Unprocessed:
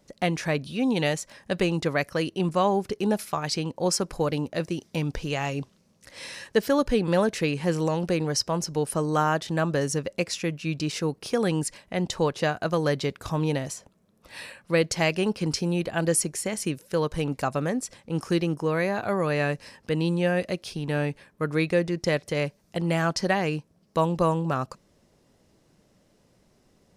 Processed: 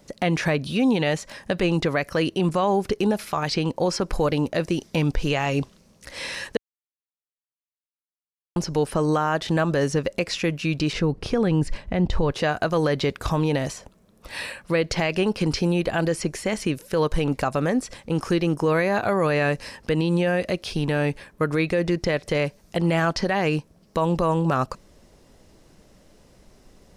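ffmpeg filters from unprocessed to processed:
ffmpeg -i in.wav -filter_complex "[0:a]asettb=1/sr,asplit=3[link_01][link_02][link_03];[link_01]atrim=end=10.934[link_04];[link_02]atrim=start=10.93:end=12.31,asetpts=PTS-STARTPTS,afade=type=in:duration=0.004:curve=qsin,afade=type=out:start_time=1.376:duration=0.004:curve=qsin,aemphasis=mode=reproduction:type=bsi[link_05];[link_03]atrim=start=12.306[link_06];[link_04][link_05]acrossfade=duration=0.004:curve1=hsin:curve2=qsin[link_07];[link_07][link_06]acrossfade=duration=0.004:curve1=qsin:curve2=hsin,asplit=3[link_08][link_09][link_10];[link_08]atrim=end=6.57,asetpts=PTS-STARTPTS,afade=type=out:start_time=6.566:duration=0.004:curve=hsin[link_11];[link_09]atrim=start=6.57:end=8.56,asetpts=PTS-STARTPTS,volume=0[link_12];[link_10]atrim=start=8.56,asetpts=PTS-STARTPTS,afade=type=in:duration=0.004:curve=hsin[link_13];[link_11][link_12][link_13]concat=n=3:v=0:a=1,acrossover=split=4300[link_14][link_15];[link_15]acompressor=threshold=-47dB:ratio=4:attack=1:release=60[link_16];[link_14][link_16]amix=inputs=2:normalize=0,asubboost=boost=3:cutoff=62,alimiter=limit=-21dB:level=0:latency=1:release=99,volume=8.5dB" out.wav

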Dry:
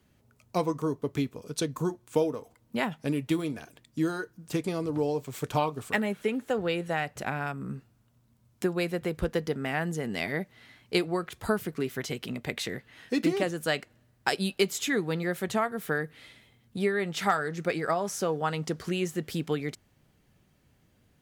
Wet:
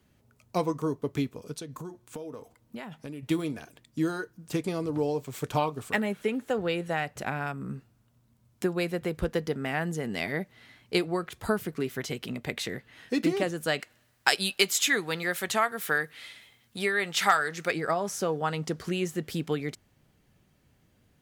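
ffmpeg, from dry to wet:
ffmpeg -i in.wav -filter_complex "[0:a]asettb=1/sr,asplit=3[link_01][link_02][link_03];[link_01]atrim=end=1.544[link_04];[link_02]atrim=start=1.54:end=3.23,asetpts=PTS-STARTPTS,afade=type=in:duration=0.004:curve=qsin,afade=type=out:start_time=1.686:duration=0.004:curve=qsin,acompressor=threshold=-36dB:ratio=6:attack=3.2:release=140:knee=1:detection=peak[link_05];[link_03]atrim=start=3.226[link_06];[link_04][link_05]acrossfade=duration=0.004:curve1=hsin:curve2=qsin[link_07];[link_07][link_06]acrossfade=duration=0.004:curve1=qsin:curve2=hsin,asplit=3[link_08][link_09][link_10];[link_08]afade=type=out:start_time=13.79:duration=0.02[link_11];[link_09]tiltshelf=frequency=640:gain=-7.5,afade=type=in:start_time=13.79:duration=0.02,afade=type=out:start_time=17.7:duration=0.02[link_12];[link_10]afade=type=in:start_time=17.7:duration=0.02[link_13];[link_11][link_12][link_13]amix=inputs=3:normalize=0" out.wav

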